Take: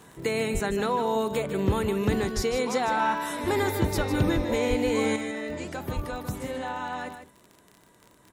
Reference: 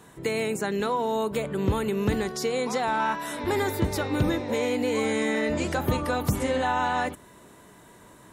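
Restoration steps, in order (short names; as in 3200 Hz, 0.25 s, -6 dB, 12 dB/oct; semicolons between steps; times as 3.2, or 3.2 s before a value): de-click; de-plosive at 0.53/2.35/3.96/4.35/4.69/5.95; inverse comb 0.153 s -9.5 dB; gain 0 dB, from 5.16 s +8 dB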